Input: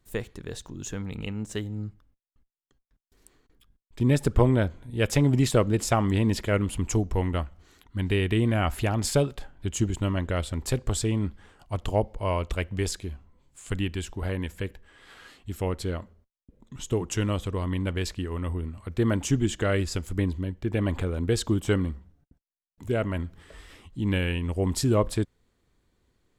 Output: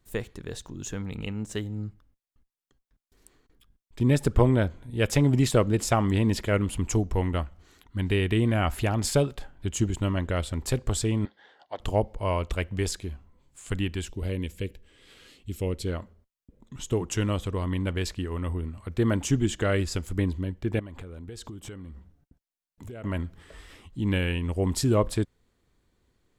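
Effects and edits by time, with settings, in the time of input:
11.25–11.80 s: cabinet simulation 490–5000 Hz, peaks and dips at 540 Hz +3 dB, 790 Hz +4 dB, 1.2 kHz -9 dB, 1.8 kHz +6 dB, 2.5 kHz -10 dB, 3.6 kHz +7 dB
14.08–15.87 s: high-order bell 1.1 kHz -10 dB
20.79–23.04 s: compression 8:1, threshold -37 dBFS

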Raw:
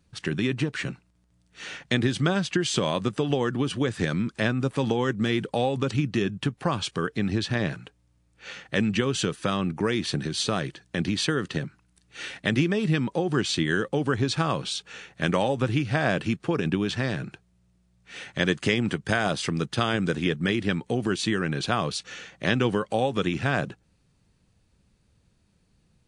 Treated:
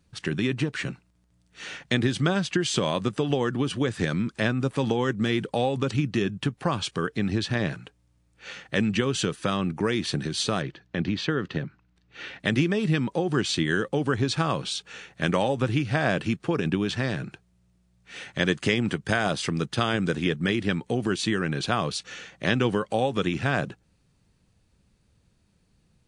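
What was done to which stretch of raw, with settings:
10.62–12.40 s: distance through air 170 m

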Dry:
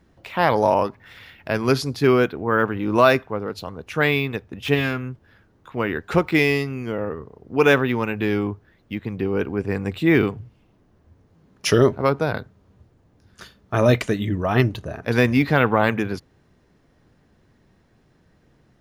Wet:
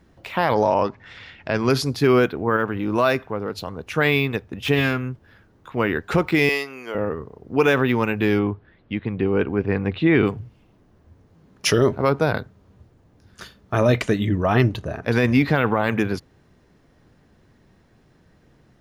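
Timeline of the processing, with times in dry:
0.54–1.70 s: low-pass 7.2 kHz 24 dB/octave
2.56–3.83 s: compression 1.5:1, threshold -27 dBFS
6.49–6.95 s: high-pass 550 Hz
8.39–10.26 s: low-pass 3.9 kHz 24 dB/octave
13.79–15.55 s: treble shelf 7.9 kHz -5.5 dB
whole clip: peak limiter -10 dBFS; trim +2.5 dB

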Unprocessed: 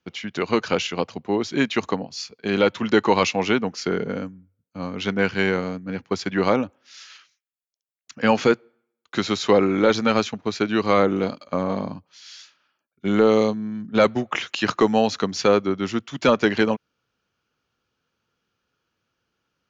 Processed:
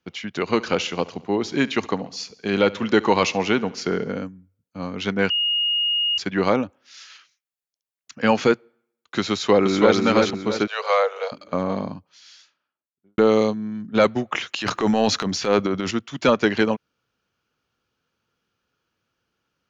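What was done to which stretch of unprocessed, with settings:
0.40–4.11 s: feedback delay 70 ms, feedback 58%, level -20.5 dB
5.30–6.18 s: bleep 2.86 kHz -18.5 dBFS
9.32–9.97 s: echo throw 330 ms, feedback 40%, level -3 dB
10.67–11.32 s: steep high-pass 460 Hz 96 dB/octave
11.90–13.18 s: studio fade out
14.56–15.91 s: transient shaper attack -9 dB, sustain +8 dB

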